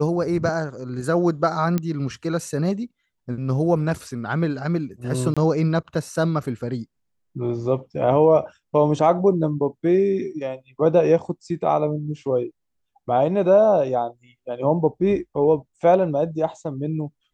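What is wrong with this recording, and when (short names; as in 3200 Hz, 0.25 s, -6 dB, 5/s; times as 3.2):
1.78 pop -11 dBFS
5.34–5.37 gap 26 ms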